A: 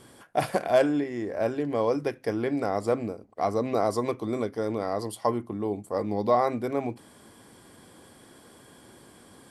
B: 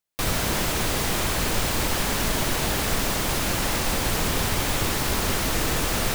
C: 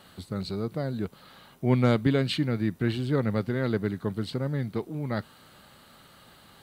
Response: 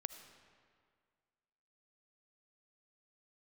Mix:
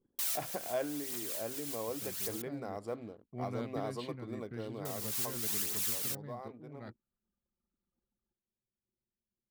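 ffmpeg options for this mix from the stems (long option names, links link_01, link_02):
-filter_complex "[0:a]acrusher=bits=9:mode=log:mix=0:aa=0.000001,volume=-14dB,afade=type=out:start_time=4.8:duration=0.7:silence=0.354813,asplit=2[link_01][link_02];[1:a]aderivative,aphaser=in_gain=1:out_gain=1:delay=2.8:decay=0.43:speed=0.87:type=triangular,volume=-6.5dB,asplit=3[link_03][link_04][link_05];[link_03]atrim=end=2.42,asetpts=PTS-STARTPTS,afade=type=out:start_time=2.416:duration=0.004:curve=hsin[link_06];[link_04]atrim=start=2.42:end=4.85,asetpts=PTS-STARTPTS,volume=0[link_07];[link_05]atrim=start=4.85,asetpts=PTS-STARTPTS,afade=type=in:duration=0.004:curve=hsin[link_08];[link_06][link_07][link_08]concat=n=3:v=0:a=1[link_09];[2:a]adelay=1700,volume=-18.5dB[link_10];[link_02]apad=whole_len=271057[link_11];[link_09][link_11]sidechaincompress=threshold=-50dB:ratio=5:attack=16:release=215[link_12];[link_01][link_12][link_10]amix=inputs=3:normalize=0,anlmdn=0.0000631"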